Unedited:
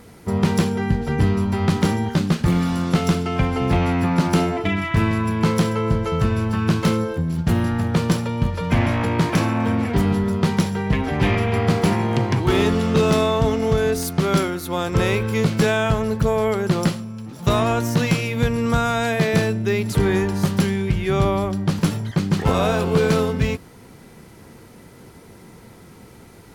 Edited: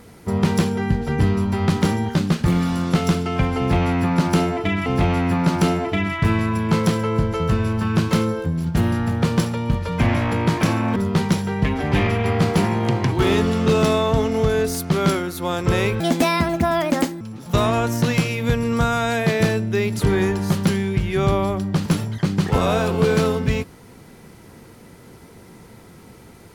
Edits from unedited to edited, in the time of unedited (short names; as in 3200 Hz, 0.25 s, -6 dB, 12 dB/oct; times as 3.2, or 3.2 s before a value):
3.58–4.86 loop, 2 plays
9.68–10.24 cut
15.28–17.14 speed 154%